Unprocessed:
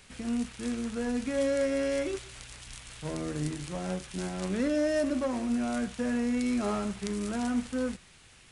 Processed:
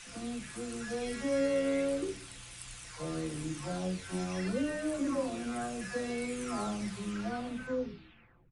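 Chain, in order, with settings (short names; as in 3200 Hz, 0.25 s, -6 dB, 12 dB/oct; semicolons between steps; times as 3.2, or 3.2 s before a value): spectral delay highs early, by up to 0.847 s; notches 50/100/150/200/250/300 Hz; frequency-shifting echo 0.138 s, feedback 41%, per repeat -94 Hz, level -19.5 dB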